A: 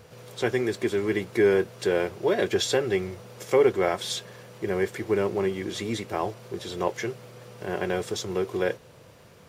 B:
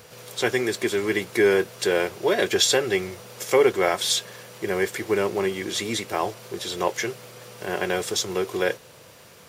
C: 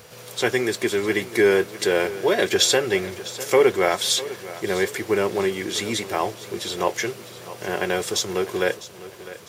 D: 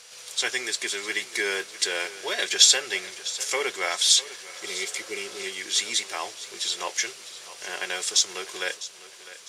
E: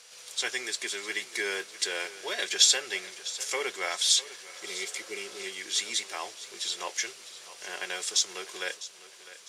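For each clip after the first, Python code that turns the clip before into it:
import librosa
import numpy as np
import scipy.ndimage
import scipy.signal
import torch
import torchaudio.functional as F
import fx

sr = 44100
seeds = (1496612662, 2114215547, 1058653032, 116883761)

y1 = fx.tilt_eq(x, sr, slope=2.0)
y1 = y1 * librosa.db_to_amplitude(4.0)
y2 = fx.dmg_crackle(y1, sr, seeds[0], per_s=150.0, level_db=-48.0)
y2 = fx.echo_feedback(y2, sr, ms=652, feedback_pct=40, wet_db=-16.0)
y2 = y2 * librosa.db_to_amplitude(1.5)
y3 = fx.spec_repair(y2, sr, seeds[1], start_s=4.51, length_s=0.93, low_hz=470.0, high_hz=1900.0, source='before')
y3 = fx.weighting(y3, sr, curve='ITU-R 468')
y3 = y3 * librosa.db_to_amplitude(-7.5)
y4 = scipy.signal.sosfilt(scipy.signal.butter(2, 110.0, 'highpass', fs=sr, output='sos'), y3)
y4 = y4 * librosa.db_to_amplitude(-4.5)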